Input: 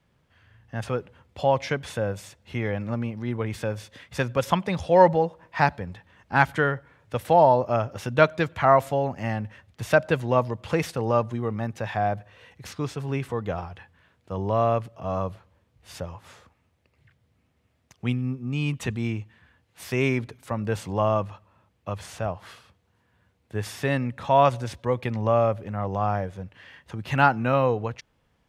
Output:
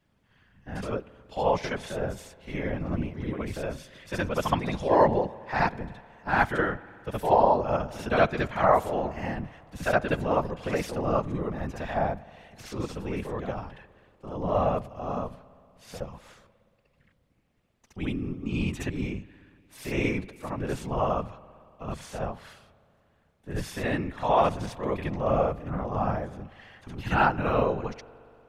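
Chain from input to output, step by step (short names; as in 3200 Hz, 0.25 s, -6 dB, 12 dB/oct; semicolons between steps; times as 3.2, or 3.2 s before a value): reverse echo 68 ms -4.5 dB; whisperiser; spring tank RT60 2.8 s, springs 59 ms, chirp 30 ms, DRR 19.5 dB; gain -4.5 dB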